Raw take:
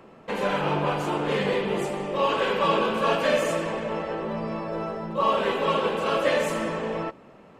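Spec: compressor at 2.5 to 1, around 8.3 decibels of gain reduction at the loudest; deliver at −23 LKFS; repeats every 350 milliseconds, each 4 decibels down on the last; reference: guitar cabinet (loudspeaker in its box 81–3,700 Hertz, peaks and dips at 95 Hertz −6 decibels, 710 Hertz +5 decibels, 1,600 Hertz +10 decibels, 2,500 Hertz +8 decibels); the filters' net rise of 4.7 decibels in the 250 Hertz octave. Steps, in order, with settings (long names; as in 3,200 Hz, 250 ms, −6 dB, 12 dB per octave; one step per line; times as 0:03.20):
parametric band 250 Hz +6.5 dB
downward compressor 2.5 to 1, threshold −30 dBFS
loudspeaker in its box 81–3,700 Hz, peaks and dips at 95 Hz −6 dB, 710 Hz +5 dB, 1,600 Hz +10 dB, 2,500 Hz +8 dB
repeating echo 350 ms, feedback 63%, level −4 dB
level +4 dB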